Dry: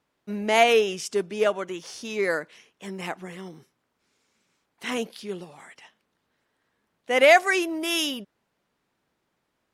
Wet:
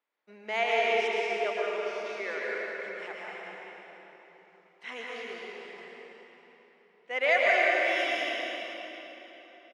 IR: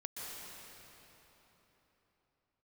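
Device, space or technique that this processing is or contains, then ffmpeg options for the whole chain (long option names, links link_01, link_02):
station announcement: -filter_complex "[0:a]highpass=450,lowpass=4300,equalizer=frequency=2100:width_type=o:width=0.41:gain=5.5,aecho=1:1:110.8|186.6:0.316|0.355[link_01];[1:a]atrim=start_sample=2205[link_02];[link_01][link_02]afir=irnorm=-1:irlink=0,volume=-6dB"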